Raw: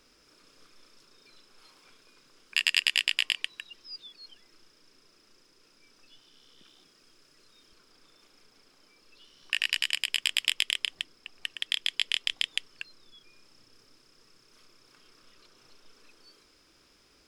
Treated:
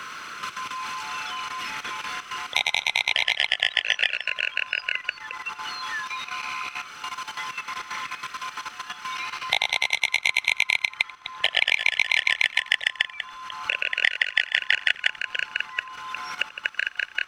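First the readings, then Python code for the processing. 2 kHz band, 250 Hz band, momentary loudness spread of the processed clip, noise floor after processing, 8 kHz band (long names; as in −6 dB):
+12.5 dB, can't be measured, 12 LU, −46 dBFS, +3.5 dB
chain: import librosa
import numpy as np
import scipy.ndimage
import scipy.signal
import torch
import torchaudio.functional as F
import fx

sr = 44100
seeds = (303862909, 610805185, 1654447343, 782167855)

y = fx.band_swap(x, sr, width_hz=1000)
y = fx.echo_pitch(y, sr, ms=110, semitones=-3, count=2, db_per_echo=-6.0)
y = fx.high_shelf(y, sr, hz=2600.0, db=-4.5)
y = fx.level_steps(y, sr, step_db=12)
y = fx.band_shelf(y, sr, hz=1800.0, db=12.0, octaves=1.7)
y = y + 10.0 ** (-21.5 / 20.0) * np.pad(y, (int(88 * sr / 1000.0), 0))[:len(y)]
y = fx.band_squash(y, sr, depth_pct=70)
y = F.gain(torch.from_numpy(y), 7.0).numpy()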